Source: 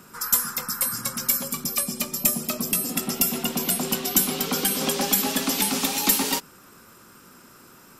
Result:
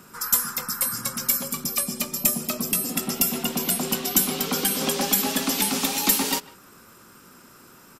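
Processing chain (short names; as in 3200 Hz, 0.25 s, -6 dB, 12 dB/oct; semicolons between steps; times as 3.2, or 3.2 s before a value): speakerphone echo 0.15 s, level -20 dB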